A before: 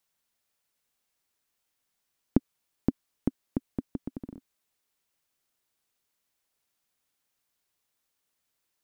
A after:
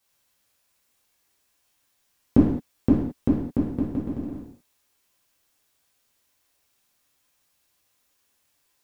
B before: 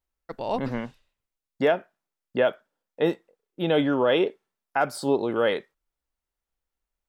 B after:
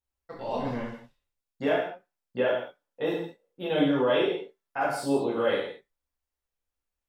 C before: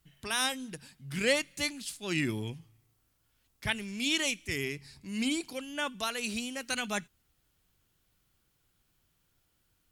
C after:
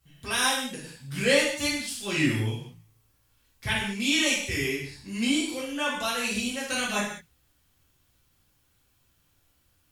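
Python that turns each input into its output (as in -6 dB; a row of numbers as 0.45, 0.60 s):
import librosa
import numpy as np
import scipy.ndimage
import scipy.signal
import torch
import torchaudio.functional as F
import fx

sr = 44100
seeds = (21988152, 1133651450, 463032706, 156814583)

y = fx.rev_gated(x, sr, seeds[0], gate_ms=240, shape='falling', drr_db=-7.5)
y = y * 10.0 ** (-30 / 20.0) / np.sqrt(np.mean(np.square(y)))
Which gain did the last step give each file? +1.5, -10.5, -2.0 dB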